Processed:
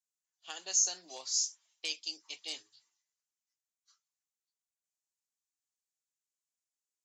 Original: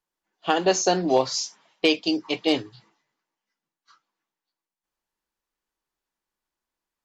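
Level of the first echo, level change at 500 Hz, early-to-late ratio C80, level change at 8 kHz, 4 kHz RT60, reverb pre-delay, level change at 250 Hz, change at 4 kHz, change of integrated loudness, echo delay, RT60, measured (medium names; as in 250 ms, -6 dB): no echo, -31.0 dB, no reverb, no reading, no reverb, no reverb, -35.0 dB, -9.5 dB, -9.5 dB, no echo, no reverb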